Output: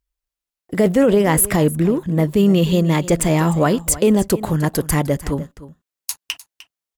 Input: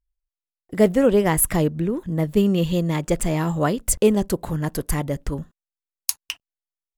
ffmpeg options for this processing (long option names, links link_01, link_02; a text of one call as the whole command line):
ffmpeg -i in.wav -af "highpass=frequency=79:poles=1,alimiter=limit=-13.5dB:level=0:latency=1:release=12,aecho=1:1:303:0.15,volume=7dB" out.wav